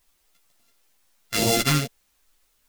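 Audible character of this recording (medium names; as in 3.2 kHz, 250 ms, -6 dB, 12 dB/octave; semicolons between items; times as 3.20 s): a buzz of ramps at a fixed pitch in blocks of 64 samples; phasing stages 2, 2.2 Hz, lowest notch 570–1400 Hz; a quantiser's noise floor 12-bit, dither triangular; a shimmering, thickened sound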